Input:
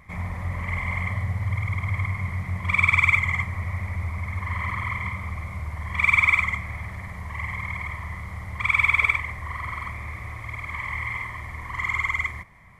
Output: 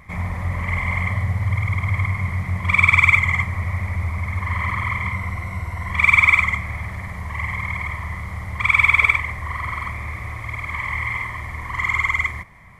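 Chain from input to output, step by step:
0:05.12–0:05.91: EQ curve with evenly spaced ripples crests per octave 2, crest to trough 8 dB
level +5 dB

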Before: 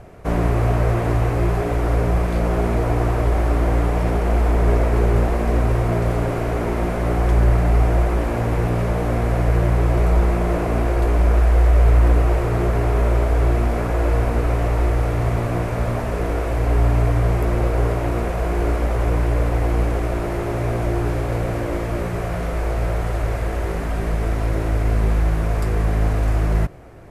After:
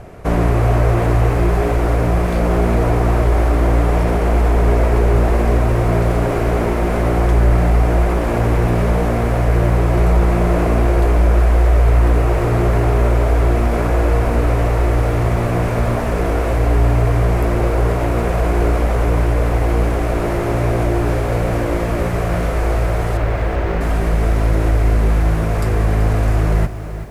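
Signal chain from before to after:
0:23.17–0:23.81: low-pass filter 3,900 Hz 12 dB per octave
in parallel at −1 dB: brickwall limiter −15 dBFS, peak gain reduction 9.5 dB
on the sum: feedback echo at a low word length 382 ms, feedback 35%, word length 7 bits, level −12 dB

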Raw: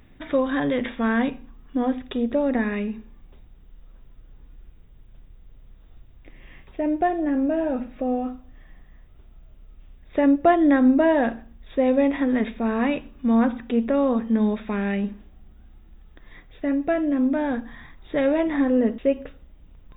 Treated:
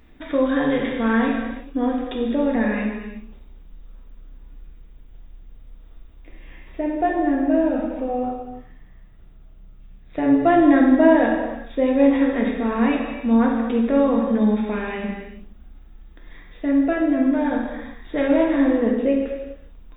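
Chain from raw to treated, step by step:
mains-hum notches 50/100/150/200 Hz
0:08.23–0:10.46: amplitude modulation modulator 150 Hz, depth 45%
reverb whose tail is shaped and stops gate 450 ms falling, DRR −1.5 dB
level −1 dB

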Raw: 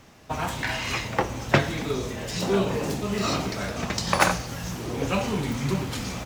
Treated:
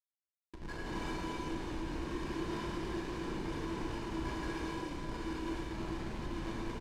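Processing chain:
time-frequency cells dropped at random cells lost 21%
high-shelf EQ 3,000 Hz −8.5 dB
downward compressor 8 to 1, threshold −33 dBFS, peak gain reduction 18 dB
brickwall limiter −30 dBFS, peak gain reduction 11 dB
automatic gain control gain up to 14.5 dB
tuned comb filter 360 Hz, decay 0.17 s, harmonics odd, mix 100%
comparator with hysteresis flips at −40.5 dBFS
high-frequency loss of the air 58 metres
double-tracking delay 31 ms −10.5 dB
reverb whose tail is shaped and stops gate 420 ms flat, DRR −5.5 dB
wrong playback speed 48 kHz file played as 44.1 kHz
level −2 dB

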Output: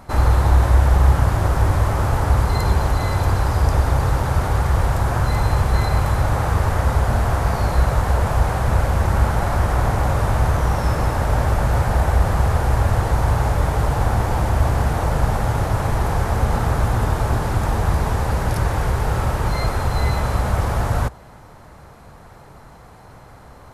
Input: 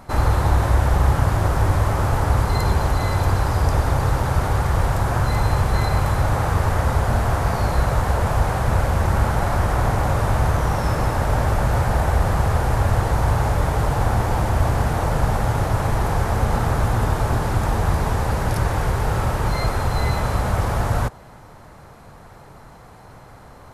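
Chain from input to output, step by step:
parametric band 64 Hz +5.5 dB 0.27 octaves

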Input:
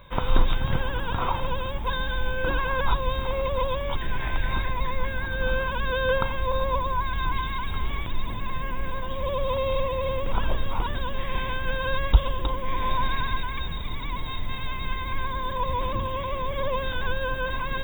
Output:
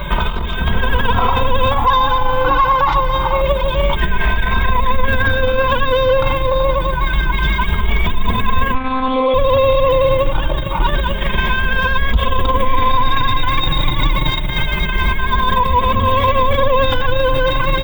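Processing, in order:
0:01.71–0:03.41: flat-topped bell 1,000 Hz +11 dB 1.1 octaves
in parallel at +1 dB: compressor whose output falls as the input rises −30 dBFS, ratio −0.5
on the sum: soft clipping −12.5 dBFS, distortion −19 dB
0:08.74–0:09.34: one-pitch LPC vocoder at 8 kHz 260 Hz
boost into a limiter +21 dB
barber-pole flanger 2.8 ms +0.27 Hz
level −3.5 dB

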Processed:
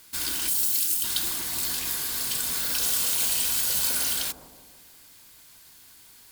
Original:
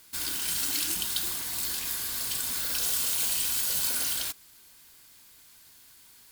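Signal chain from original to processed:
0:00.48–0:01.04: first-order pre-emphasis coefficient 0.8
bucket-brigade delay 162 ms, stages 1,024, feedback 54%, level −6 dB
level +3 dB

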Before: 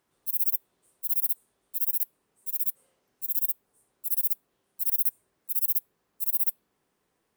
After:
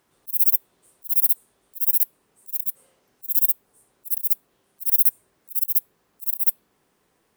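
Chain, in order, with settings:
volume swells 146 ms
level +8 dB

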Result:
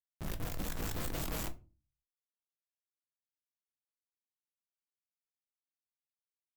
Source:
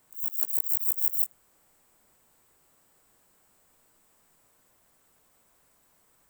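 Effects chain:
gliding playback speed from 71% → 121%
source passing by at 0:01.58, 41 m/s, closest 20 metres
comparator with hysteresis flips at −35.5 dBFS
on a send at −7 dB: convolution reverb RT60 0.35 s, pre-delay 6 ms
on the sum: wow of a warped record 33 1/3 rpm, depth 100 cents
level +2 dB

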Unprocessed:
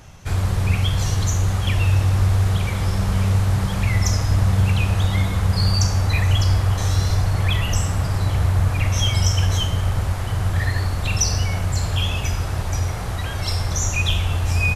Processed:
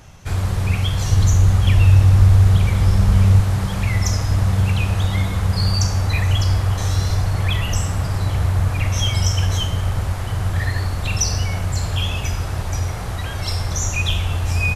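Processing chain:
0:01.10–0:03.41: low-shelf EQ 170 Hz +8 dB

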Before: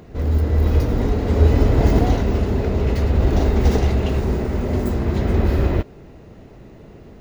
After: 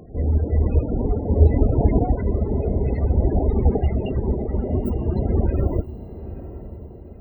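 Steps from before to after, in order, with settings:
reverb reduction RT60 1 s
spectral peaks only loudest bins 32
feedback delay with all-pass diffusion 903 ms, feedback 41%, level −14 dB

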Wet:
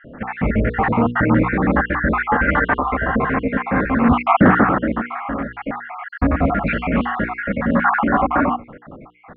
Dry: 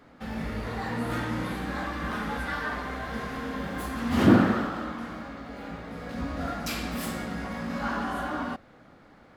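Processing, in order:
time-frequency cells dropped at random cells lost 54%
Butterworth low-pass 2,400 Hz 36 dB per octave
mains-hum notches 60/120/180/240/300/360/420/480 Hz
boost into a limiter +18.5 dB
highs frequency-modulated by the lows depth 0.11 ms
level −1 dB

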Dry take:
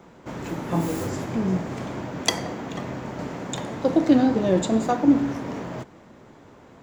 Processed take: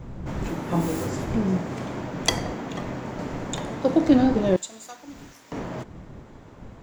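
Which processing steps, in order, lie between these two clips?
wind on the microphone 170 Hz −32 dBFS
0:04.56–0:05.52: first-order pre-emphasis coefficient 0.97

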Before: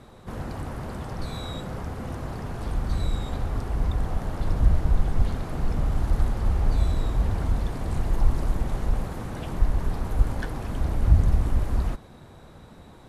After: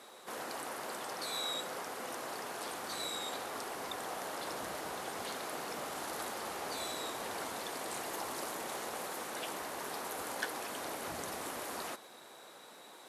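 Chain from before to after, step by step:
Chebyshev high-pass filter 400 Hz, order 2
spectral tilt +3 dB per octave
level −1 dB

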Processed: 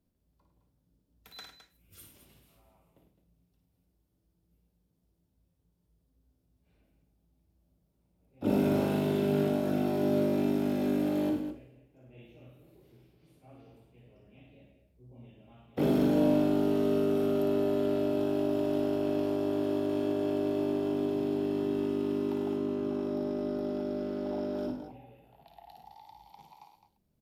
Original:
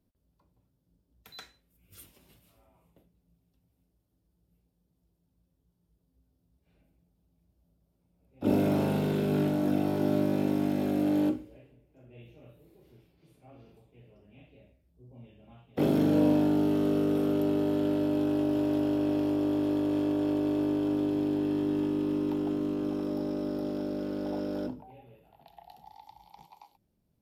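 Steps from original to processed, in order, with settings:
0:22.56–0:24.58: high-shelf EQ 5,100 Hz −7.5 dB
multi-tap delay 55/103/212 ms −5.5/−10/−10 dB
level −2 dB

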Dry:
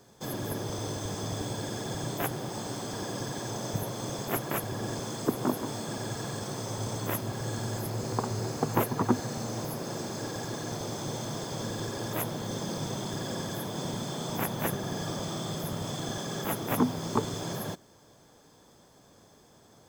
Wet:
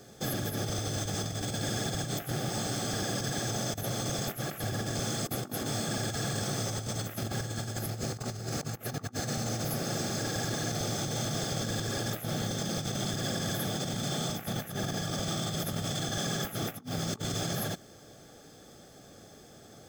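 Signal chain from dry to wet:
dynamic equaliser 390 Hz, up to −6 dB, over −43 dBFS, Q 0.86
compressor whose output falls as the input rises −37 dBFS, ratio −0.5
Butterworth band-reject 980 Hz, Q 3.5
level +4 dB

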